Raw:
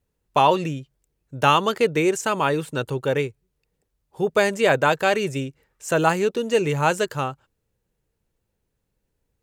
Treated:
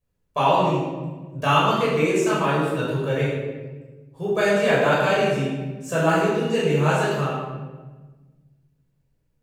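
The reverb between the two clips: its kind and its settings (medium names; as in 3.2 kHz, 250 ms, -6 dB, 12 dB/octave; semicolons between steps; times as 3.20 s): simulated room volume 960 m³, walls mixed, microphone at 5.6 m; trim -11 dB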